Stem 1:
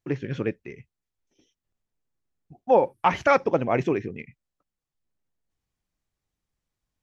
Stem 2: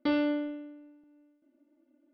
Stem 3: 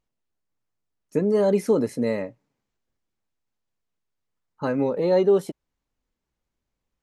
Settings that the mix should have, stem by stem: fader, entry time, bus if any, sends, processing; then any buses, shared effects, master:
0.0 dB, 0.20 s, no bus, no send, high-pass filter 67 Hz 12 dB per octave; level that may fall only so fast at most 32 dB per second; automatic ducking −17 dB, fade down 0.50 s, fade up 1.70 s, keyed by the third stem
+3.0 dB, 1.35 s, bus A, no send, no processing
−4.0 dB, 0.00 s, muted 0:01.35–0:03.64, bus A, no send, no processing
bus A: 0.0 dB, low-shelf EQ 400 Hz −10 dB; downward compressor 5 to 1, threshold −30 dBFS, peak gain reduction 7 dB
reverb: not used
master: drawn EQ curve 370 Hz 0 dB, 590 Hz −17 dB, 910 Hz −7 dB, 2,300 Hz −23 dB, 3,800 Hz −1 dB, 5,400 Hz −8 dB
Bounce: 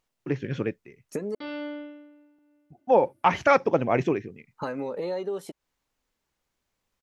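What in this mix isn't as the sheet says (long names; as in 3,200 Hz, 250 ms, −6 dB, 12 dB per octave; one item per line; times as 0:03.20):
stem 1: missing level that may fall only so fast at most 32 dB per second
stem 3 −4.0 dB → +7.0 dB
master: missing drawn EQ curve 370 Hz 0 dB, 590 Hz −17 dB, 910 Hz −7 dB, 2,300 Hz −23 dB, 3,800 Hz −1 dB, 5,400 Hz −8 dB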